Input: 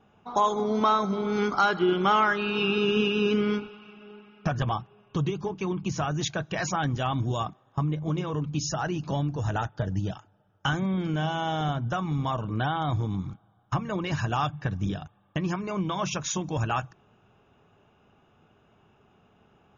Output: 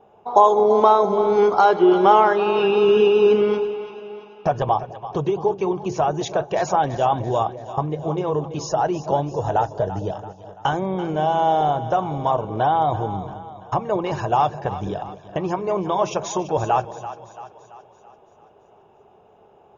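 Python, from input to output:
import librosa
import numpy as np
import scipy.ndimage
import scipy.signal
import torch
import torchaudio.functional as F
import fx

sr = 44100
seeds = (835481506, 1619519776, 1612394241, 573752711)

y = fx.band_shelf(x, sr, hz=600.0, db=13.5, octaves=1.7)
y = fx.echo_split(y, sr, split_hz=590.0, low_ms=214, high_ms=336, feedback_pct=52, wet_db=-13)
y = y * librosa.db_to_amplitude(-1.0)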